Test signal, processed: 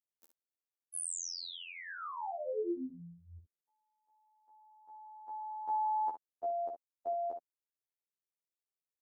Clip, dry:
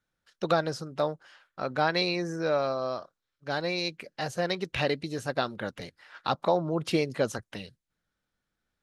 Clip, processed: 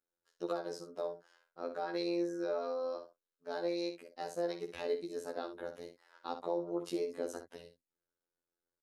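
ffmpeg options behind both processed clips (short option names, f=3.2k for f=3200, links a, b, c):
-af "equalizer=f=2.5k:w=0.65:g=-11,alimiter=limit=-21dB:level=0:latency=1:release=90,lowshelf=f=200:t=q:w=1.5:g=-12.5,afftfilt=real='hypot(re,im)*cos(PI*b)':imag='0':win_size=2048:overlap=0.75,aecho=1:1:14|60:0.251|0.355,volume=-3.5dB"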